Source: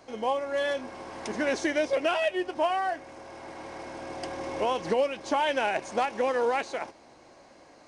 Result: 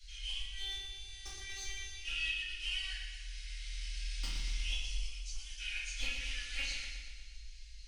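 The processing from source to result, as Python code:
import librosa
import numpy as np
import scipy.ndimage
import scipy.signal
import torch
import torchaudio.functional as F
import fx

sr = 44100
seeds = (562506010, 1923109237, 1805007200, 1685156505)

y = scipy.signal.sosfilt(scipy.signal.cheby2(4, 60, [120.0, 1000.0], 'bandstop', fs=sr, output='sos'), x)
y = fx.rider(y, sr, range_db=4, speed_s=0.5)
y = fx.robotise(y, sr, hz=389.0, at=(0.39, 2.0))
y = fx.band_shelf(y, sr, hz=2400.0, db=-13.5, octaves=1.7, at=(4.74, 5.6))
y = np.clip(y, -10.0 ** (-34.0 / 20.0), 10.0 ** (-34.0 / 20.0))
y = fx.tilt_eq(y, sr, slope=-3.5)
y = fx.notch_comb(y, sr, f0_hz=220.0)
y = fx.echo_feedback(y, sr, ms=119, feedback_pct=59, wet_db=-7.5)
y = fx.room_shoebox(y, sr, seeds[0], volume_m3=150.0, walls='mixed', distance_m=2.4)
y = y * librosa.db_to_amplitude(3.5)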